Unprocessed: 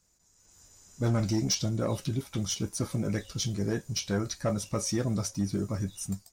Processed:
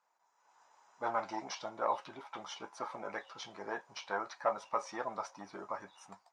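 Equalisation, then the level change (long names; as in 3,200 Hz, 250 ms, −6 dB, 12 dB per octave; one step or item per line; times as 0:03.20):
four-pole ladder band-pass 1,000 Hz, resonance 60%
+13.5 dB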